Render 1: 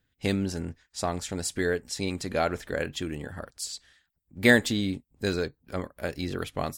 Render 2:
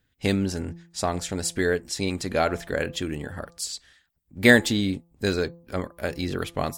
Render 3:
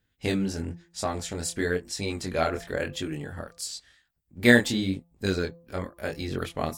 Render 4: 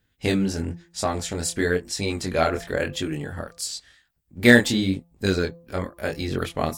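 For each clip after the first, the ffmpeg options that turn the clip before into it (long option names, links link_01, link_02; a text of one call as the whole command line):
ffmpeg -i in.wav -af "bandreject=frequency=170:width_type=h:width=4,bandreject=frequency=340:width_type=h:width=4,bandreject=frequency=510:width_type=h:width=4,bandreject=frequency=680:width_type=h:width=4,bandreject=frequency=850:width_type=h:width=4,bandreject=frequency=1020:width_type=h:width=4,bandreject=frequency=1190:width_type=h:width=4,volume=3.5dB" out.wav
ffmpeg -i in.wav -af "flanger=delay=19:depth=6.4:speed=0.98" out.wav
ffmpeg -i in.wav -af "asoftclip=type=tanh:threshold=-4.5dB,volume=4.5dB" out.wav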